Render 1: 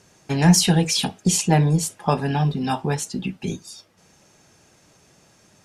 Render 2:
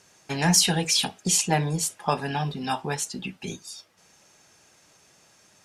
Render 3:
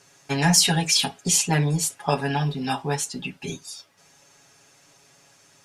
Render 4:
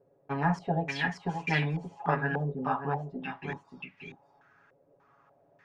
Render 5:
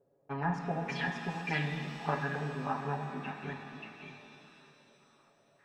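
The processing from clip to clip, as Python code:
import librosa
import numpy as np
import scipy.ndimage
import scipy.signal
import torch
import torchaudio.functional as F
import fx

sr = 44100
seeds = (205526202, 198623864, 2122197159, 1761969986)

y1 = fx.low_shelf(x, sr, hz=490.0, db=-10.0)
y2 = y1 + 0.79 * np.pad(y1, (int(7.2 * sr / 1000.0), 0))[:len(y1)]
y3 = y2 + 10.0 ** (-7.5 / 20.0) * np.pad(y2, (int(580 * sr / 1000.0), 0))[:len(y2)]
y3 = fx.filter_held_lowpass(y3, sr, hz=3.4, low_hz=520.0, high_hz=2300.0)
y3 = F.gain(torch.from_numpy(y3), -8.5).numpy()
y4 = fx.rev_shimmer(y3, sr, seeds[0], rt60_s=3.2, semitones=7, shimmer_db=-8, drr_db=5.0)
y4 = F.gain(torch.from_numpy(y4), -5.5).numpy()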